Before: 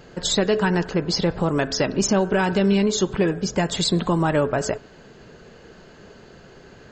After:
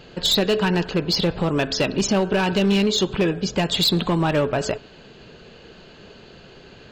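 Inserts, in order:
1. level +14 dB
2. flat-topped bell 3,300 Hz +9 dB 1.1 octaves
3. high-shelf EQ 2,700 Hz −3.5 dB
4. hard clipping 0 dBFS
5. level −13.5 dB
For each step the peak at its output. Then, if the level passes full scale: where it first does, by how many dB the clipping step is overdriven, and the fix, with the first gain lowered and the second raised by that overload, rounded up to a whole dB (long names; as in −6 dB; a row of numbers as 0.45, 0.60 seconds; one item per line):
+6.0, +11.5, +9.5, 0.0, −13.5 dBFS
step 1, 9.5 dB
step 1 +4 dB, step 5 −3.5 dB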